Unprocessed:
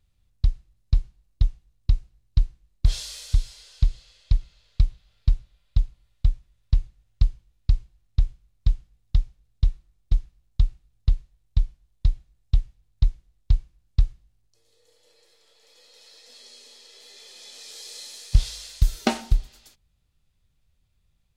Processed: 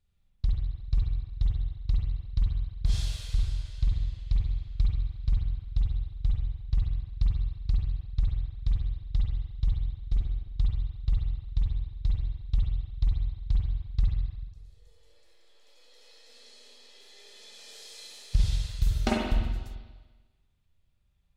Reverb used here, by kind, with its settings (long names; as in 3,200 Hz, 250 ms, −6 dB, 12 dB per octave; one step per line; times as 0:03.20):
spring reverb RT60 1.3 s, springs 44/49 ms, chirp 25 ms, DRR −4 dB
level −8 dB